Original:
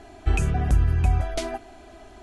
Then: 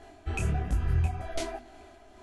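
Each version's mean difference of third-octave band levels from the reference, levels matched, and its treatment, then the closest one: 2.0 dB: hum notches 50/100/150/200/250 Hz; tremolo 2.2 Hz, depth 45%; on a send: tape echo 91 ms, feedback 88%, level -23.5 dB, low-pass 5.2 kHz; on the sum: detune thickener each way 43 cents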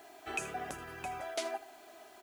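8.5 dB: high-pass 470 Hz 12 dB/octave; on a send: delay 79 ms -16.5 dB; on the sum: word length cut 10-bit, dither triangular; trim -5.5 dB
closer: first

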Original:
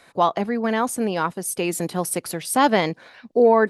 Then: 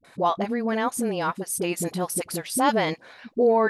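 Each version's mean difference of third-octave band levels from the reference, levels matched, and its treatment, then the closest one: 5.5 dB: phase dispersion highs, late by 47 ms, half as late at 470 Hz; in parallel at -2 dB: compression, threshold -26 dBFS, peak gain reduction 14.5 dB; on the sum: trim -5.5 dB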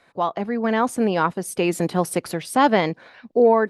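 2.5 dB: treble shelf 5.8 kHz -12 dB; level rider; trim -4.5 dB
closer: second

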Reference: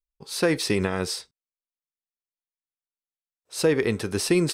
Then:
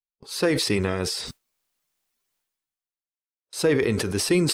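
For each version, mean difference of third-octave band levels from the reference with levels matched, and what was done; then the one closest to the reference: 2.5 dB: coarse spectral quantiser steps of 15 dB; gate with hold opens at -36 dBFS; decay stretcher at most 38 dB/s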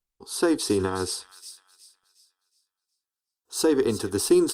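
4.5 dB: static phaser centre 580 Hz, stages 6; on a send: feedback echo behind a high-pass 364 ms, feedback 33%, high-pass 2.4 kHz, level -11 dB; on the sum: trim +3.5 dB; Opus 32 kbps 48 kHz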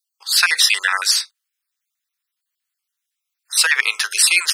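14.5 dB: random holes in the spectrogram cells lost 35%; high-pass 1.3 kHz 24 dB/octave; loudness maximiser +19 dB; trim -1 dB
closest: first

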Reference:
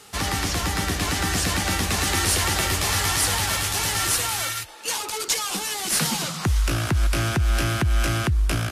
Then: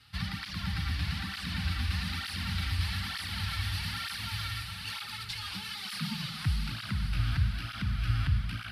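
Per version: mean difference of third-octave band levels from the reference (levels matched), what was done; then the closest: 8.5 dB: compression, threshold -23 dBFS, peak gain reduction 6.5 dB; FFT filter 200 Hz 0 dB, 400 Hz -29 dB, 1.4 kHz -7 dB, 4.6 kHz -4 dB, 6.8 kHz -27 dB, 9.7 kHz -17 dB; on a send: echo that smears into a reverb 554 ms, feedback 50%, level -4 dB; on the sum: cancelling through-zero flanger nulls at 1.1 Hz, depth 6 ms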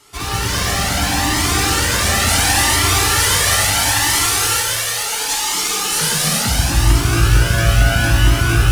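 4.5 dB: in parallel at -11 dB: bit crusher 4-bit; on the sum: thinning echo 276 ms, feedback 68%, high-pass 470 Hz, level -6.5 dB; gated-style reverb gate 470 ms flat, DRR -7 dB; Shepard-style flanger rising 0.72 Hz; trim +1 dB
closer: second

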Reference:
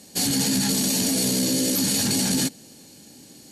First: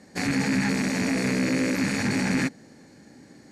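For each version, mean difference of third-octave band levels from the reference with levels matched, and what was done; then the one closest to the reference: 6.5 dB: rattle on loud lows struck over -32 dBFS, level -17 dBFS; low-pass 5.8 kHz 12 dB/octave; resonant high shelf 2.4 kHz -7 dB, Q 3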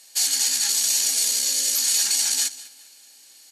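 10.5 dB: on a send: feedback delay 199 ms, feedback 36%, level -17 dB; on the sum: dynamic bell 6.6 kHz, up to +6 dB, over -38 dBFS, Q 1.4; high-pass 1.3 kHz 12 dB/octave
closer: first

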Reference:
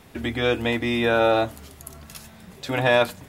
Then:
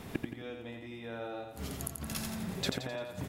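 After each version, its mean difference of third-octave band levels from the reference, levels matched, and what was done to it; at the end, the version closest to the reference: 11.5 dB: peaking EQ 190 Hz +5 dB 3 oct; inverted gate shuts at -19 dBFS, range -26 dB; on a send: feedback delay 86 ms, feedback 46%, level -5 dB; on the sum: trim +1 dB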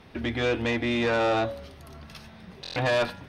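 4.5 dB: Savitzky-Golay filter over 15 samples; de-hum 139.8 Hz, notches 28; valve stage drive 19 dB, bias 0.3; buffer glitch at 2.62 s, samples 1024, times 5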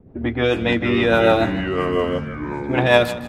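8.5 dB: level-controlled noise filter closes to 420 Hz, open at -15.5 dBFS; rotary cabinet horn 6.7 Hz; ever faster or slower copies 361 ms, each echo -4 st, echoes 3, each echo -6 dB; on a send: feedback delay 158 ms, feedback 35%, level -15 dB; on the sum: trim +6 dB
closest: second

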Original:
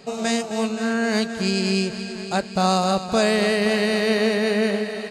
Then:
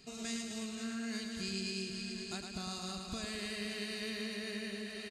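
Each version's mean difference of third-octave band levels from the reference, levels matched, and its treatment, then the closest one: 6.0 dB: compression, threshold -23 dBFS, peak gain reduction 8.5 dB; amplifier tone stack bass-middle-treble 6-0-2; comb 2.9 ms, depth 42%; feedback delay 109 ms, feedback 53%, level -5.5 dB; trim +6 dB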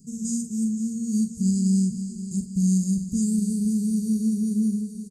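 17.0 dB: elliptic band-stop 220–6900 Hz, stop band 50 dB; high-order bell 2.4 kHz -13 dB; early reflections 42 ms -10 dB, 59 ms -11.5 dB; trim +1.5 dB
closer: first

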